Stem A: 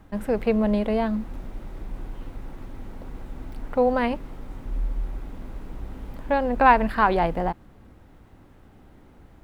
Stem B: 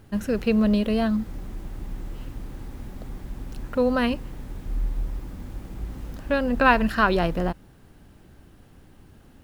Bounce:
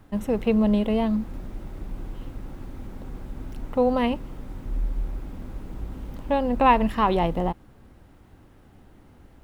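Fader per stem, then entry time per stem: -2.0 dB, -7.5 dB; 0.00 s, 0.00 s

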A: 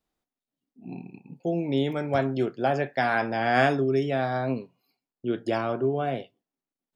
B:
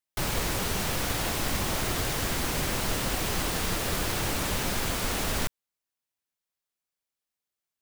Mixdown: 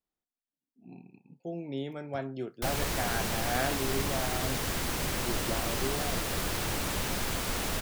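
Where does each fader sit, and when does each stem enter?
-10.5 dB, -3.0 dB; 0.00 s, 2.45 s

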